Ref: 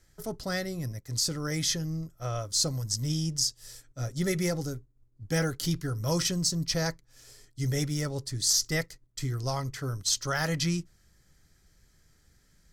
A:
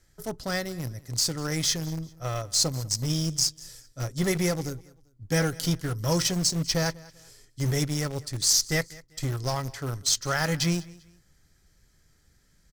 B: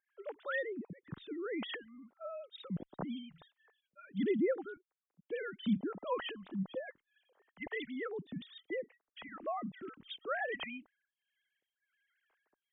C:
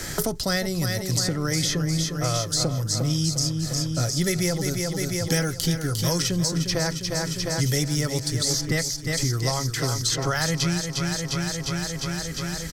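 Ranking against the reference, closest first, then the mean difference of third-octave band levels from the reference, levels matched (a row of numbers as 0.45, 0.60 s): A, C, B; 3.5, 8.5, 17.0 dB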